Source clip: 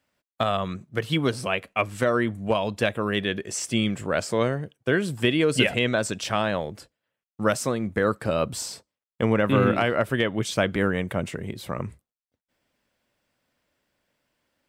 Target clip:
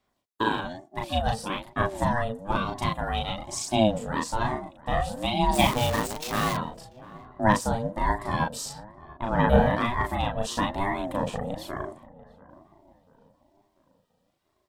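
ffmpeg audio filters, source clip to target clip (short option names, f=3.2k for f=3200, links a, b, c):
-filter_complex "[0:a]asuperstop=centerf=2100:order=12:qfactor=2.1,aphaser=in_gain=1:out_gain=1:delay=3.3:decay=0.46:speed=0.53:type=sinusoidal,asettb=1/sr,asplit=3[a][b][c];[a]atrim=end=5.534[d];[b]atrim=start=5.53:end=6.53,asetpts=PTS-STARTPTS,afade=t=in:d=0.004:c=qsin,afade=t=out:st=0.996:d=0.004:c=qsin,acrusher=bits=5:dc=4:mix=0:aa=0.000001[e];[c]atrim=start=6.526[f];[d][e]acrossfade=d=0.004:c1=hsin:c2=qsin[g];[g][f]acrossfade=d=0.004:c1=qsin:c2=hsin,asettb=1/sr,asplit=3[h][i][j];[h]atrim=end=8.694[k];[i]atrim=start=8.69:end=9.37,asetpts=PTS-STARTPTS,afade=t=in:d=0.004:c=qsin,afade=t=out:st=0.676:d=0.004:c=qsin,bass=f=250:g=-13,treble=f=4k:g=-13[l];[j]atrim=start=9.366[m];[k][l]acrossfade=d=0.004:c1=hsin:c2=qsin[n];[n][m]acrossfade=d=0.004:c1=qsin:c2=hsin,asplit=2[o][p];[p]adelay=37,volume=-2dB[q];[o][q]amix=inputs=2:normalize=0,asplit=2[r][s];[s]adelay=690,lowpass=f=1.2k:p=1,volume=-19dB,asplit=2[t][u];[u]adelay=690,lowpass=f=1.2k:p=1,volume=0.45,asplit=2[v][w];[w]adelay=690,lowpass=f=1.2k:p=1,volume=0.45,asplit=2[x][y];[y]adelay=690,lowpass=f=1.2k:p=1,volume=0.45[z];[t][v][x][z]amix=inputs=4:normalize=0[aa];[r][aa]amix=inputs=2:normalize=0,aeval=exprs='val(0)*sin(2*PI*420*n/s+420*0.2/1.1*sin(2*PI*1.1*n/s))':c=same,volume=-2.5dB"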